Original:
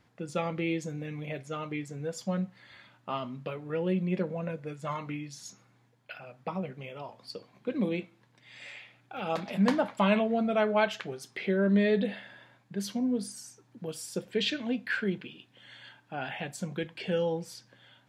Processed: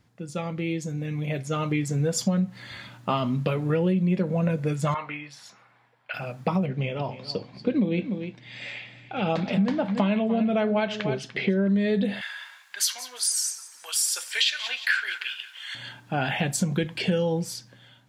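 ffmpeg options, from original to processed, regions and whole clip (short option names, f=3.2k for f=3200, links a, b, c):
-filter_complex "[0:a]asettb=1/sr,asplit=3[a][b][c];[a]atrim=end=4.944[d];[b]atrim=start=4.94:end=6.14,asetpts=PTS-STARTPTS,afade=t=in:d=0.004:c=qsin,afade=t=out:st=1.196:d=0.004:c=qsin,acrossover=split=570 2900:gain=0.0794 1 0.1[e][f][g];[e][f][g]amix=inputs=3:normalize=0,bandreject=f=6.5k:w=8.7[h];[c]atrim=start=6.136[i];[d][h]acrossfade=d=0.004:c1=hsin:c2=qsin[j];[j][i]acrossfade=d=0.004:c1=qsin:c2=hsin,asettb=1/sr,asplit=3[k][l][m];[k]atrim=end=6.664[n];[l]atrim=start=6.66:end=11.68,asetpts=PTS-STARTPTS,afade=t=in:d=0.004:c=qsin,afade=t=out:st=5.016:d=0.004:c=qsin,lowpass=3.8k,equalizer=f=1.2k:w=1.6:g=-4.5,aecho=1:1:295:0.188,atrim=end_sample=221382[o];[m]atrim=start=11.676[p];[n][o]acrossfade=d=0.004:c1=hsin:c2=qsin[q];[q][p]acrossfade=d=0.004:c1=qsin:c2=hsin,asettb=1/sr,asplit=3[r][s][t];[r]atrim=end=12.214[u];[s]atrim=start=12.21:end=15.75,asetpts=PTS-STARTPTS,afade=t=in:d=0.004:c=qsin,afade=t=out:st=3.536:d=0.004:c=qsin,highpass=f=1.1k:w=0.5412,highpass=f=1.1k:w=1.3066,aecho=1:1:177|354|531:0.141|0.0551|0.0215,atrim=end_sample=156114,acontrast=31[v];[t]atrim=start=15.746[w];[u][v]acrossfade=d=0.004:c1=hsin:c2=qsin[x];[x][w]acrossfade=d=0.004:c1=qsin:c2=hsin,dynaudnorm=f=430:g=7:m=13.5dB,bass=f=250:g=7,treble=f=4k:g=6,acompressor=threshold=-18dB:ratio=10,volume=-2dB"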